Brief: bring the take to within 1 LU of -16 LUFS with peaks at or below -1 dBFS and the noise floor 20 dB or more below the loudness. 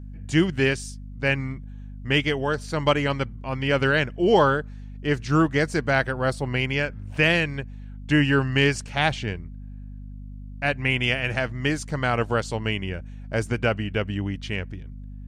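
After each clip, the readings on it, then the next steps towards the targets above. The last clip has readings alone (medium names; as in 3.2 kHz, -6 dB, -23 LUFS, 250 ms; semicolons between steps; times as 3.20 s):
hum 50 Hz; highest harmonic 250 Hz; hum level -35 dBFS; loudness -24.0 LUFS; peak level -7.0 dBFS; loudness target -16.0 LUFS
-> hum notches 50/100/150/200/250 Hz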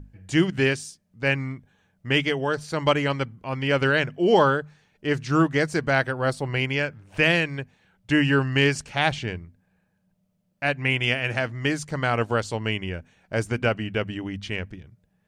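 hum not found; loudness -24.0 LUFS; peak level -6.5 dBFS; loudness target -16.0 LUFS
-> trim +8 dB; peak limiter -1 dBFS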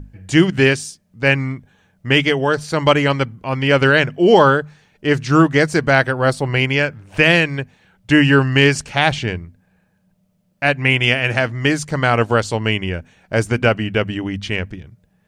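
loudness -16.5 LUFS; peak level -1.0 dBFS; noise floor -62 dBFS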